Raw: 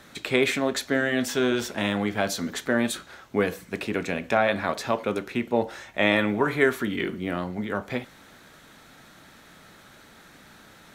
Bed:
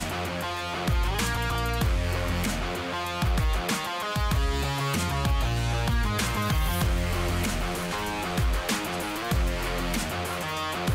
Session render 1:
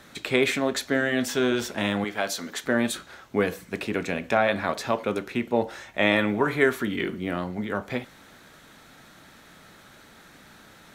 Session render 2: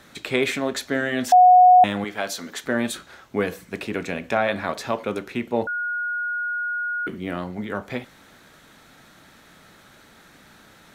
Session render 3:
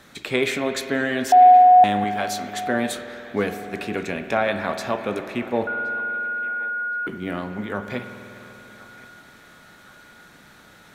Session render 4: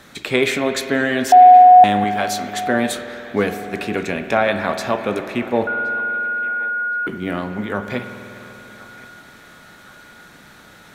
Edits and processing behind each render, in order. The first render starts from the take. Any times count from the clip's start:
0:02.04–0:02.64: parametric band 94 Hz −13.5 dB 2.9 octaves
0:01.32–0:01.84: beep over 730 Hz −8 dBFS; 0:05.67–0:07.07: beep over 1,440 Hz −23.5 dBFS
feedback echo with a band-pass in the loop 1,071 ms, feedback 60%, band-pass 1,600 Hz, level −18.5 dB; spring reverb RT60 3.5 s, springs 49 ms, chirp 70 ms, DRR 8.5 dB
level +4.5 dB; brickwall limiter −2 dBFS, peak gain reduction 1 dB

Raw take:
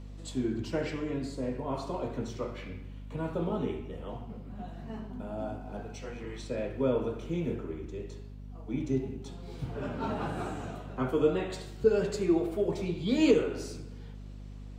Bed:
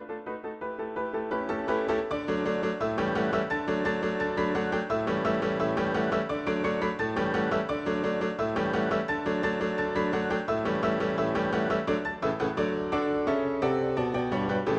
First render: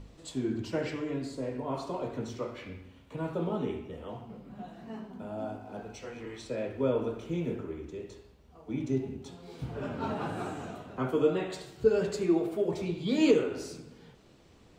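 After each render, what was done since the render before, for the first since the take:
hum removal 50 Hz, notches 5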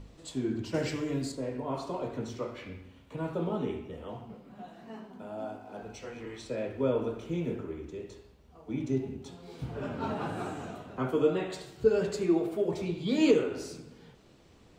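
0:00.74–0:01.32: bass and treble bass +5 dB, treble +11 dB
0:04.34–0:05.81: low-shelf EQ 170 Hz −10.5 dB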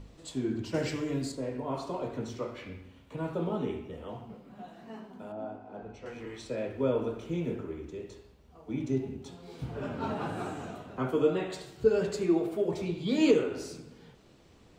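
0:05.32–0:06.06: low-pass filter 1,300 Hz 6 dB per octave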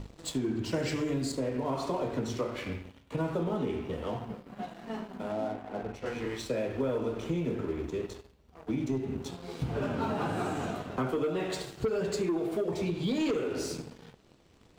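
leveller curve on the samples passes 2
downward compressor 6 to 1, threshold −28 dBFS, peak gain reduction 11.5 dB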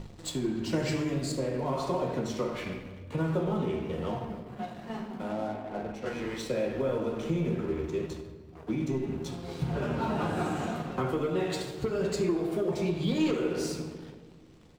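double-tracking delay 13 ms −13 dB
rectangular room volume 1,900 cubic metres, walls mixed, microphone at 0.93 metres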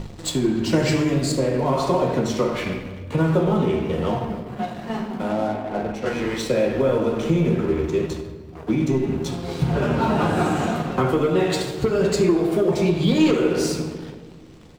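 level +10 dB

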